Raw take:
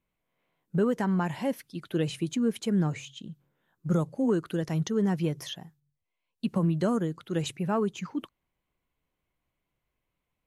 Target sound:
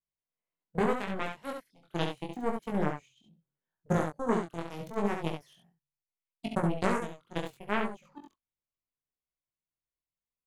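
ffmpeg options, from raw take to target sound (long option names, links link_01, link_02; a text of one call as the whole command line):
ffmpeg -i in.wav -af "aeval=exprs='0.178*(cos(1*acos(clip(val(0)/0.178,-1,1)))-cos(1*PI/2))+0.0631*(cos(3*acos(clip(val(0)/0.178,-1,1)))-cos(3*PI/2))':channel_layout=same,aecho=1:1:42|69:0.2|0.531,flanger=delay=18.5:depth=5.4:speed=0.76,volume=6dB" out.wav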